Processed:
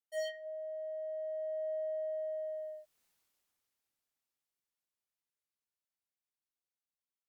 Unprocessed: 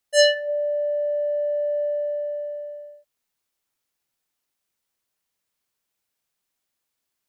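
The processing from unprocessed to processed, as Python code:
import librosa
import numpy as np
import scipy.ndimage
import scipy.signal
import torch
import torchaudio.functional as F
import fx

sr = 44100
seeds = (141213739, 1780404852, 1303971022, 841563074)

y = fx.doppler_pass(x, sr, speed_mps=22, closest_m=5.2, pass_at_s=3.05)
y = fx.slew_limit(y, sr, full_power_hz=22.0)
y = F.gain(torch.from_numpy(y), 3.0).numpy()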